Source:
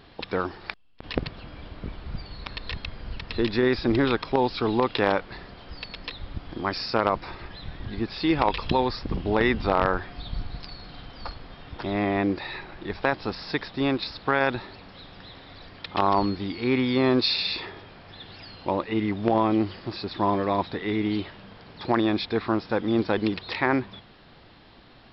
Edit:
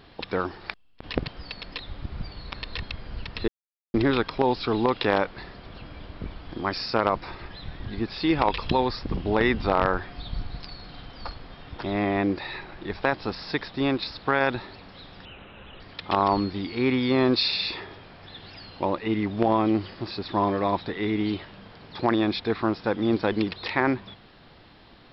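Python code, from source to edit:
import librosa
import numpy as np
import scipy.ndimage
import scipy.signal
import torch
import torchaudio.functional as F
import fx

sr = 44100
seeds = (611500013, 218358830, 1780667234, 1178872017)

y = fx.edit(x, sr, fx.swap(start_s=1.28, length_s=0.75, other_s=5.6, other_length_s=0.81),
    fx.silence(start_s=3.42, length_s=0.46),
    fx.speed_span(start_s=15.25, length_s=0.41, speed=0.74), tone=tone)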